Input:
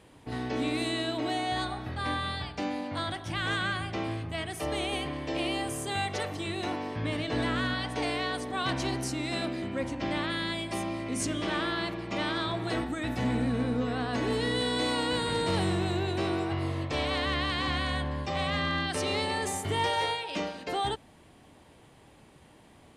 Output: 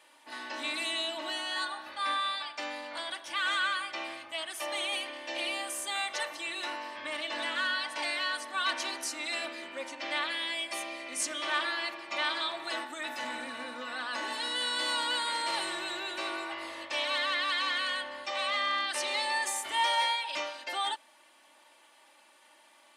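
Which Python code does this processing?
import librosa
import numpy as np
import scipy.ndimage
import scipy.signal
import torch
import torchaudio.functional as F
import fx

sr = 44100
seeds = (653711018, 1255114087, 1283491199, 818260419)

y = scipy.signal.sosfilt(scipy.signal.butter(2, 900.0, 'highpass', fs=sr, output='sos'), x)
y = y + 0.8 * np.pad(y, (int(3.4 * sr / 1000.0), 0))[:len(y)]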